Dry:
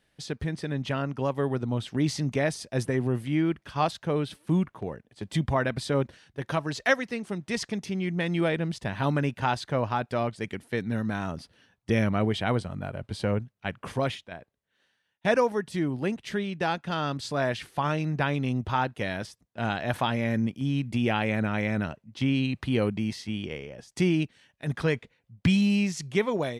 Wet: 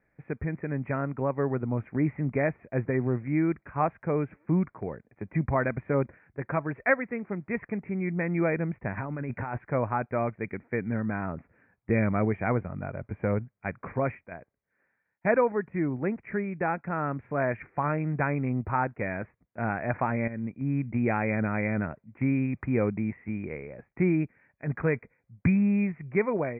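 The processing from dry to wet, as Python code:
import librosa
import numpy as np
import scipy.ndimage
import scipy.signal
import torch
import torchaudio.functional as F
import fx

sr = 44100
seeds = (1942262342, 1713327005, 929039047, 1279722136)

y = fx.over_compress(x, sr, threshold_db=-32.0, ratio=-1.0, at=(8.97, 9.58))
y = fx.edit(y, sr, fx.fade_in_from(start_s=20.28, length_s=0.43, floor_db=-12.5), tone=tone)
y = scipy.signal.sosfilt(scipy.signal.cheby1(8, 1.0, 2400.0, 'lowpass', fs=sr, output='sos'), y)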